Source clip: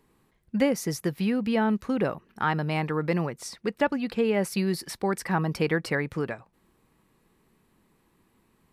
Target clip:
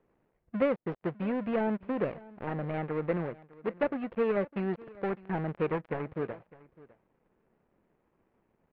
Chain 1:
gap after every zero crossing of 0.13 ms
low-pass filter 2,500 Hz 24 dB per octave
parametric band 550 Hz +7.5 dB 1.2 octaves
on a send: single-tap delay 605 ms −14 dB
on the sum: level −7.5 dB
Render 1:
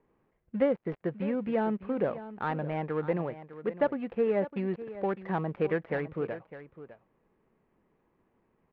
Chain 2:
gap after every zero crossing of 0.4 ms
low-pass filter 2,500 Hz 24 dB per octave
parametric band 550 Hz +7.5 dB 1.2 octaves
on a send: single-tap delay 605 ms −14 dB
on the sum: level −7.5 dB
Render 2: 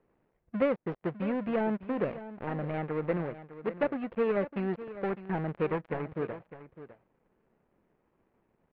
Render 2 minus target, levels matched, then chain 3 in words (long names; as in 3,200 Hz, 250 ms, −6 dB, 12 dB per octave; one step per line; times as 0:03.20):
echo-to-direct +7 dB
gap after every zero crossing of 0.4 ms
low-pass filter 2,500 Hz 24 dB per octave
parametric band 550 Hz +7.5 dB 1.2 octaves
on a send: single-tap delay 605 ms −21 dB
on the sum: level −7.5 dB